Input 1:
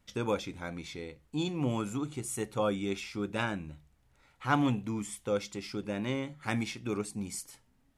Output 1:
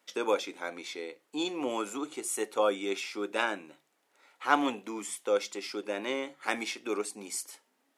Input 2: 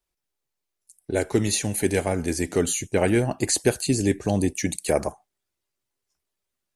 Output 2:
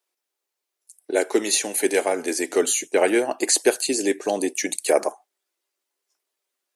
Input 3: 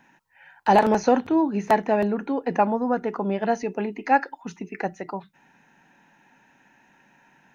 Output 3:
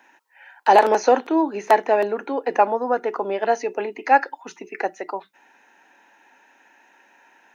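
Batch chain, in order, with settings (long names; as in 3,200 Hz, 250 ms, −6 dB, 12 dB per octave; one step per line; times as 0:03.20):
high-pass filter 330 Hz 24 dB per octave
level +4 dB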